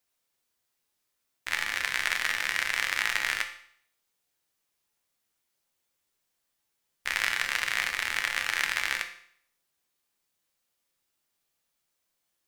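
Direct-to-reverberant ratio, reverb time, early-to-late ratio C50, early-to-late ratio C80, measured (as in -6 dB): 5.0 dB, 0.60 s, 10.5 dB, 13.5 dB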